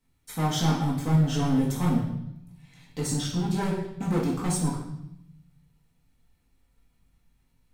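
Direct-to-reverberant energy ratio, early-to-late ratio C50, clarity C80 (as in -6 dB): -6.0 dB, 4.0 dB, 7.0 dB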